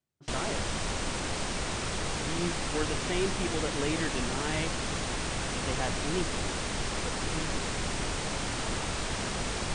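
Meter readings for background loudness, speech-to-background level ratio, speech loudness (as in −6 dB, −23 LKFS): −32.5 LKFS, −3.5 dB, −36.0 LKFS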